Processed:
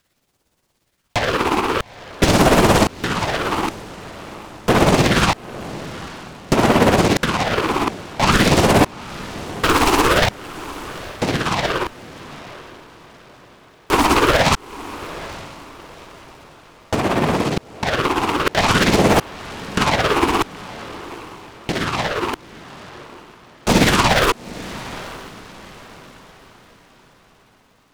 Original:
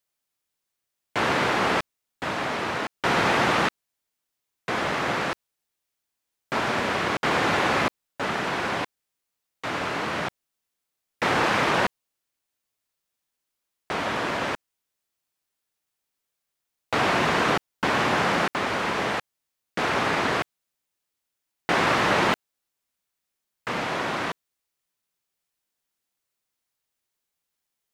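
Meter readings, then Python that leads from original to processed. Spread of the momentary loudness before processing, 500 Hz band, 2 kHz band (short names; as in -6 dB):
11 LU, +9.0 dB, +4.0 dB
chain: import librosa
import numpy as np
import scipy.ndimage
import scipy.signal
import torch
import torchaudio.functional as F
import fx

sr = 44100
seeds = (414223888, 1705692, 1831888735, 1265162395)

p1 = fx.over_compress(x, sr, threshold_db=-28.0, ratio=-0.5)
p2 = fx.high_shelf(p1, sr, hz=6500.0, db=-8.0)
p3 = fx.fold_sine(p2, sr, drive_db=11, ceiling_db=-12.5)
p4 = p3 * (1.0 - 0.55 / 2.0 + 0.55 / 2.0 * np.cos(2.0 * np.pi * 17.0 * (np.arange(len(p3)) / sr)))
p5 = fx.phaser_stages(p4, sr, stages=6, low_hz=150.0, high_hz=2900.0, hz=0.48, feedback_pct=25)
p6 = fx.low_shelf(p5, sr, hz=330.0, db=5.5)
p7 = p6 + fx.echo_diffused(p6, sr, ms=863, feedback_pct=40, wet_db=-16, dry=0)
p8 = fx.noise_mod_delay(p7, sr, seeds[0], noise_hz=1300.0, depth_ms=0.08)
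y = p8 * 10.0 ** (5.5 / 20.0)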